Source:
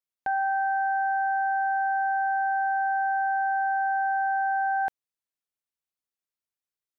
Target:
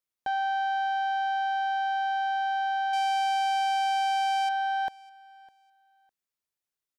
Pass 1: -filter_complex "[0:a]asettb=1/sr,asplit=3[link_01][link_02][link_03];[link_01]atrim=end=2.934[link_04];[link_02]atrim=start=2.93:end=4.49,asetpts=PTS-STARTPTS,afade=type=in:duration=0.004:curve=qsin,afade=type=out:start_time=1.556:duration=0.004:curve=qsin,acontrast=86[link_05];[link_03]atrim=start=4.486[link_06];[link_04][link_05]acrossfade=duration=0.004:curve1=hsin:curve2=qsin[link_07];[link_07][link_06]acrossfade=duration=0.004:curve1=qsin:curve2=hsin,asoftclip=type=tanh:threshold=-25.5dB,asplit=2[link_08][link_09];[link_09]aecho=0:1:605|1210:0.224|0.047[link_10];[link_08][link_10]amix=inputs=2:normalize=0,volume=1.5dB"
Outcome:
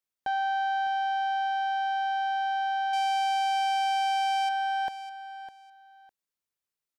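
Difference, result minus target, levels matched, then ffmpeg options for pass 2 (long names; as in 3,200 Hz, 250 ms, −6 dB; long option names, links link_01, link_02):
echo-to-direct +10.5 dB
-filter_complex "[0:a]asettb=1/sr,asplit=3[link_01][link_02][link_03];[link_01]atrim=end=2.934[link_04];[link_02]atrim=start=2.93:end=4.49,asetpts=PTS-STARTPTS,afade=type=in:duration=0.004:curve=qsin,afade=type=out:start_time=1.556:duration=0.004:curve=qsin,acontrast=86[link_05];[link_03]atrim=start=4.486[link_06];[link_04][link_05]acrossfade=duration=0.004:curve1=hsin:curve2=qsin[link_07];[link_07][link_06]acrossfade=duration=0.004:curve1=qsin:curve2=hsin,asoftclip=type=tanh:threshold=-25.5dB,asplit=2[link_08][link_09];[link_09]aecho=0:1:605|1210:0.0668|0.014[link_10];[link_08][link_10]amix=inputs=2:normalize=0,volume=1.5dB"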